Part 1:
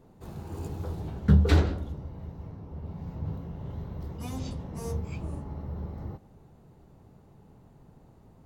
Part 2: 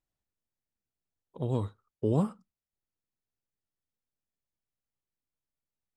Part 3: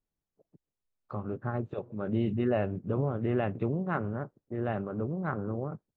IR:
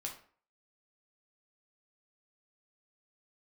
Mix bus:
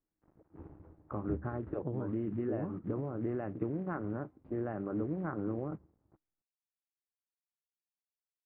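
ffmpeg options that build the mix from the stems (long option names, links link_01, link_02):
-filter_complex "[0:a]aeval=exprs='sgn(val(0))*max(abs(val(0))-0.01,0)':channel_layout=same,aeval=exprs='val(0)*pow(10,-19*if(lt(mod(1.8*n/s,1),2*abs(1.8)/1000),1-mod(1.8*n/s,1)/(2*abs(1.8)/1000),(mod(1.8*n/s,1)-2*abs(1.8)/1000)/(1-2*abs(1.8)/1000))/20)':channel_layout=same,volume=-9dB,afade=type=out:start_time=1.16:duration=0.26:silence=0.421697[link_01];[1:a]adelay=450,volume=-2dB[link_02];[2:a]lowshelf=frequency=68:gain=-6,acrusher=bits=5:mode=log:mix=0:aa=0.000001,volume=-1dB[link_03];[link_02][link_03]amix=inputs=2:normalize=0,acompressor=threshold=-33dB:ratio=12,volume=0dB[link_04];[link_01][link_04]amix=inputs=2:normalize=0,lowpass=frequency=1900:width=0.5412,lowpass=frequency=1900:width=1.3066,equalizer=frequency=310:width=5.5:gain=11"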